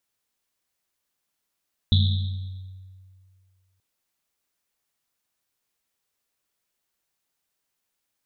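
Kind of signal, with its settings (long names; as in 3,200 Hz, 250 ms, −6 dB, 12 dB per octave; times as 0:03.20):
drum after Risset length 1.88 s, pitch 94 Hz, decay 2.13 s, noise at 3,700 Hz, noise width 630 Hz, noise 20%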